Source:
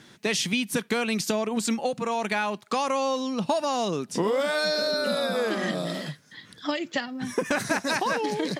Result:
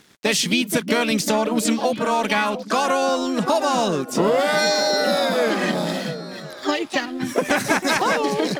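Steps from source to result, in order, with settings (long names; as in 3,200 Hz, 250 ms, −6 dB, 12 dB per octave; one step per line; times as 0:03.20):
dead-zone distortion −51.5 dBFS
pitch-shifted copies added +5 semitones −6 dB
echo through a band-pass that steps 351 ms, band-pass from 190 Hz, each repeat 1.4 octaves, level −8 dB
level +5.5 dB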